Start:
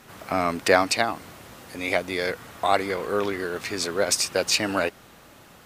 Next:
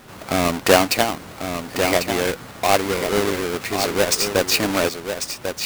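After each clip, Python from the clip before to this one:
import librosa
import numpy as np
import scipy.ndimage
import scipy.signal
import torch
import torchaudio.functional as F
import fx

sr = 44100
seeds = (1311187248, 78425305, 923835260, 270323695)

y = fx.halfwave_hold(x, sr)
y = y + 10.0 ** (-7.5 / 20.0) * np.pad(y, (int(1095 * sr / 1000.0), 0))[:len(y)]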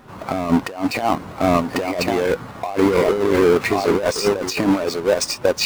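y = fx.peak_eq(x, sr, hz=1000.0, db=3.5, octaves=0.64)
y = fx.over_compress(y, sr, threshold_db=-24.0, ratio=-1.0)
y = fx.spectral_expand(y, sr, expansion=1.5)
y = y * librosa.db_to_amplitude(5.5)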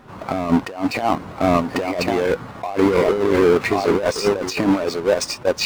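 y = fx.high_shelf(x, sr, hz=7300.0, db=-6.5)
y = fx.attack_slew(y, sr, db_per_s=500.0)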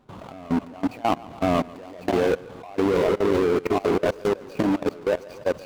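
y = scipy.ndimage.median_filter(x, 25, mode='constant')
y = fx.echo_feedback(y, sr, ms=142, feedback_pct=32, wet_db=-9.0)
y = fx.level_steps(y, sr, step_db=20)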